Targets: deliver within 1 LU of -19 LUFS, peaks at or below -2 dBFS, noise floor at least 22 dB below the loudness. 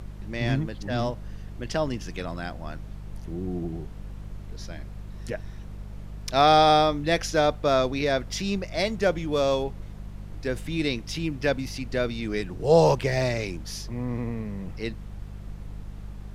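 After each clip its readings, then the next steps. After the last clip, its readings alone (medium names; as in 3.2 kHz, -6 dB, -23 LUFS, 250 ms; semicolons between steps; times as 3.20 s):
hum 50 Hz; highest harmonic 200 Hz; hum level -36 dBFS; noise floor -40 dBFS; noise floor target -48 dBFS; loudness -26.0 LUFS; peak level -6.0 dBFS; loudness target -19.0 LUFS
-> de-hum 50 Hz, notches 4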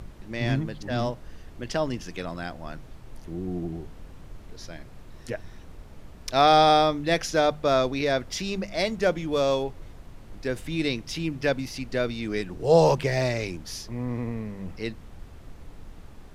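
hum not found; noise floor -46 dBFS; noise floor target -48 dBFS
-> noise print and reduce 6 dB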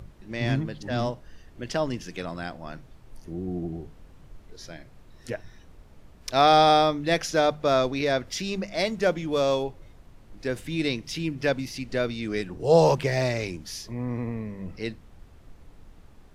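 noise floor -52 dBFS; loudness -26.0 LUFS; peak level -6.0 dBFS; loudness target -19.0 LUFS
-> trim +7 dB; peak limiter -2 dBFS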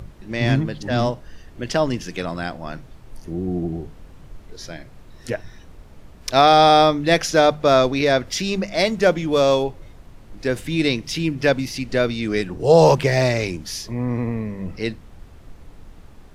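loudness -19.5 LUFS; peak level -2.0 dBFS; noise floor -45 dBFS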